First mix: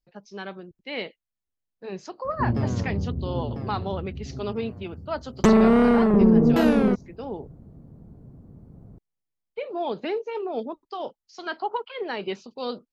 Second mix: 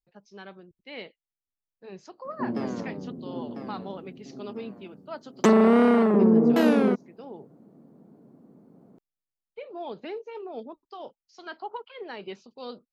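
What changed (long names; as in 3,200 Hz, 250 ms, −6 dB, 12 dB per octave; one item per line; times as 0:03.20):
speech −8.0 dB
background: add high-pass filter 210 Hz 24 dB per octave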